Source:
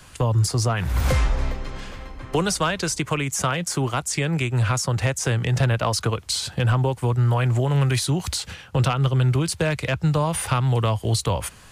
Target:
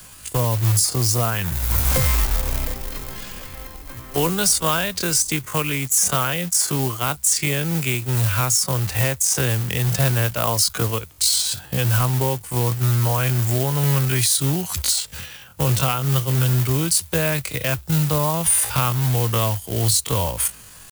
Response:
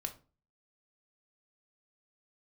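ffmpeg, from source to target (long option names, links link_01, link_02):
-af "atempo=0.56,acrusher=bits=4:mode=log:mix=0:aa=0.000001,aemphasis=mode=production:type=50fm"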